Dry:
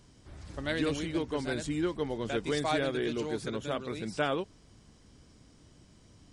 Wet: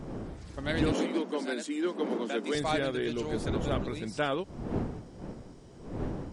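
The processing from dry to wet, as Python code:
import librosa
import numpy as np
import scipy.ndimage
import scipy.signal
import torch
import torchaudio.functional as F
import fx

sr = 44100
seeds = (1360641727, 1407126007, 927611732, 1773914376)

y = fx.dmg_wind(x, sr, seeds[0], corner_hz=320.0, level_db=-36.0)
y = fx.steep_highpass(y, sr, hz=190.0, slope=96, at=(0.92, 2.55))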